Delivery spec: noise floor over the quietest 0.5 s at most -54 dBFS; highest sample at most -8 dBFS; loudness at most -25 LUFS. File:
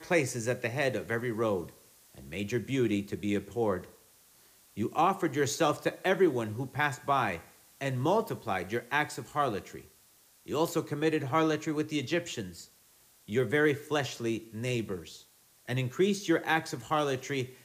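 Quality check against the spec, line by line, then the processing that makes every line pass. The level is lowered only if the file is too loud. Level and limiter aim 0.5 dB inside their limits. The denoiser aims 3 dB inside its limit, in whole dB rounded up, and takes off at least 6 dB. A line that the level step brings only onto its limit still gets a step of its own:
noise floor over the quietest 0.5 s -62 dBFS: OK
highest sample -14.0 dBFS: OK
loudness -31.0 LUFS: OK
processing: none

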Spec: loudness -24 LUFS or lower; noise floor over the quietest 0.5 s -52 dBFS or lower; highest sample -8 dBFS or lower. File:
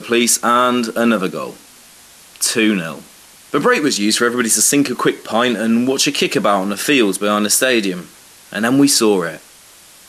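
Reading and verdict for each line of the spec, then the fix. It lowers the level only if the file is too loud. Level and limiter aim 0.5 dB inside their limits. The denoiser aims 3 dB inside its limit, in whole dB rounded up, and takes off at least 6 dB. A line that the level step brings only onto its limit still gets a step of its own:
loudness -15.0 LUFS: fail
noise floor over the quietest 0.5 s -44 dBFS: fail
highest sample -2.5 dBFS: fail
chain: gain -9.5 dB

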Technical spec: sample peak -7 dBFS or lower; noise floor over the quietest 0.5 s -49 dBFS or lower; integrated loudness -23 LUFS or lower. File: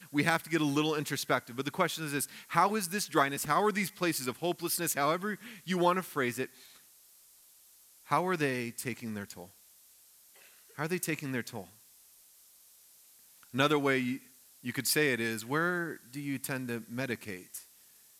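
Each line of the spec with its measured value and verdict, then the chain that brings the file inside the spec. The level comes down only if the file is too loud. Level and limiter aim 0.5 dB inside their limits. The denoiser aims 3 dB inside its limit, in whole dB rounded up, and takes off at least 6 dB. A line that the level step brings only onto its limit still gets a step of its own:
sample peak -10.0 dBFS: OK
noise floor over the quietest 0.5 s -60 dBFS: OK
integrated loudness -32.0 LUFS: OK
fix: none

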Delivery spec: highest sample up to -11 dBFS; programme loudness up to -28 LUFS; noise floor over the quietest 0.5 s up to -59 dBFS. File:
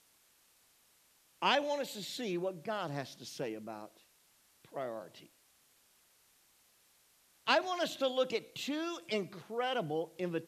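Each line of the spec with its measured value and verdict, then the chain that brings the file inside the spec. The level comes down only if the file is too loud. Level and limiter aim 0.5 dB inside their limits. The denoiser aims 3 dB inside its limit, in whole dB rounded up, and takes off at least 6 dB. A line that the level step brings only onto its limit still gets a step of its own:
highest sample -14.0 dBFS: OK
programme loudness -36.0 LUFS: OK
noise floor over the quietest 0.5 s -69 dBFS: OK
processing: none

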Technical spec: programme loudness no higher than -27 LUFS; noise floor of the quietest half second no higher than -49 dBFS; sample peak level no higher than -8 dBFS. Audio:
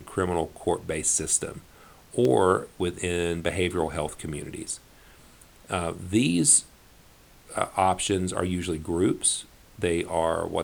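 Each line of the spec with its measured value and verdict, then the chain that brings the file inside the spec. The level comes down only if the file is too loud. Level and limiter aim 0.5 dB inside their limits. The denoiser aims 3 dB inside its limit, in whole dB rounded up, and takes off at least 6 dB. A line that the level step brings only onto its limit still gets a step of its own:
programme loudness -25.5 LUFS: fail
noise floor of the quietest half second -54 dBFS: OK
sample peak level -5.5 dBFS: fail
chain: gain -2 dB; limiter -8.5 dBFS

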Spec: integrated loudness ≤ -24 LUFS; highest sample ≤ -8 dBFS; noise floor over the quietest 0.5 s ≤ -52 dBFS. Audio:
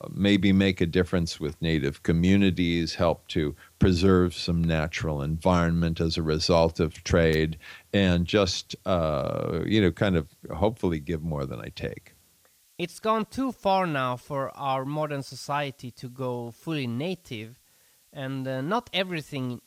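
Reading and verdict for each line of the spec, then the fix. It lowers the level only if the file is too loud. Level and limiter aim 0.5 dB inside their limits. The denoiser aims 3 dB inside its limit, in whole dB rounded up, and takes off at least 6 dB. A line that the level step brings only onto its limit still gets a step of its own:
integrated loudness -26.0 LUFS: OK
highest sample -9.0 dBFS: OK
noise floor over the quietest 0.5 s -62 dBFS: OK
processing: none

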